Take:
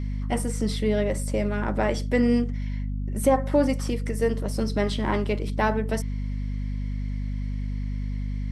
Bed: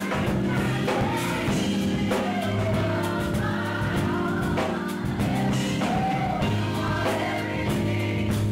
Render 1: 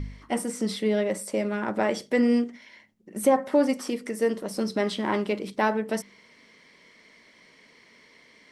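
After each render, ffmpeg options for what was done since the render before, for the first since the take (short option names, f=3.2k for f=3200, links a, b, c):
-af "bandreject=f=50:t=h:w=4,bandreject=f=100:t=h:w=4,bandreject=f=150:t=h:w=4,bandreject=f=200:t=h:w=4,bandreject=f=250:t=h:w=4"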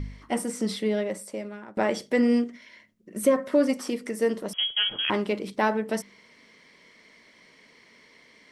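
-filter_complex "[0:a]asettb=1/sr,asplit=3[a][b][c];[a]atrim=end=2.484[d];[b]atrim=start=2.48:end=3.7,asetpts=PTS-STARTPTS,afade=t=in:d=0.004:c=qsin,afade=t=out:st=1.216:d=0.004:c=qsin,asuperstop=centerf=820:order=4:qfactor=4.4[e];[c]atrim=start=3.696[f];[d][e]acrossfade=d=0.004:c1=hsin:c2=qsin[g];[g][f]acrossfade=d=0.004:c1=qsin:c2=hsin,asettb=1/sr,asplit=3[h][i][j];[h]atrim=end=4.534[k];[i]atrim=start=4.53:end=5.1,asetpts=PTS-STARTPTS,afade=t=in:d=0.004:c=qsin,afade=t=out:st=0.566:d=0.004:c=qsin,lowpass=f=3k:t=q:w=0.5098,lowpass=f=3k:t=q:w=0.6013,lowpass=f=3k:t=q:w=0.9,lowpass=f=3k:t=q:w=2.563,afreqshift=-3500[l];[j]atrim=start=5.096[m];[k][l]acrossfade=d=0.004:c1=hsin:c2=qsin[n];[n][m]acrossfade=d=0.004:c1=qsin:c2=hsin,asplit=2[o][p];[o]atrim=end=1.77,asetpts=PTS-STARTPTS,afade=t=out:st=0.72:d=1.05:silence=0.0944061[q];[p]atrim=start=1.77,asetpts=PTS-STARTPTS,afade=t=in:d=0.004:c=hsin:silence=0.0944061[r];[q][r]concat=n=2:v=0:a=1"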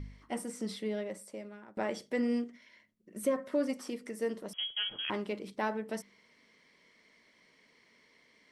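-af "volume=-9.5dB"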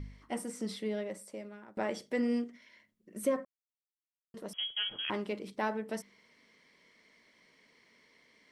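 -filter_complex "[0:a]asplit=3[a][b][c];[a]atrim=end=3.45,asetpts=PTS-STARTPTS,afade=t=out:st=3.446:d=0.004:c=hsin[d];[b]atrim=start=3.45:end=4.34,asetpts=PTS-STARTPTS,volume=0[e];[c]atrim=start=4.34,asetpts=PTS-STARTPTS,afade=t=in:d=0.004:c=hsin[f];[d][e][f]concat=n=3:v=0:a=1"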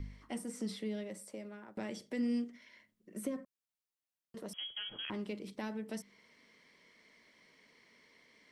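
-filter_complex "[0:a]acrossover=split=300|2500[a][b][c];[b]acompressor=threshold=-45dB:ratio=6[d];[c]alimiter=level_in=15dB:limit=-24dB:level=0:latency=1:release=278,volume=-15dB[e];[a][d][e]amix=inputs=3:normalize=0"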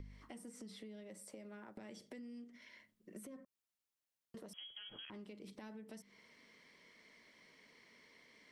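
-af "alimiter=level_in=13dB:limit=-24dB:level=0:latency=1:release=232,volume=-13dB,acompressor=threshold=-49dB:ratio=5"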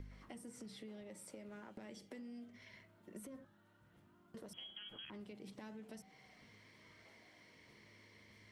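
-filter_complex "[1:a]volume=-43.5dB[a];[0:a][a]amix=inputs=2:normalize=0"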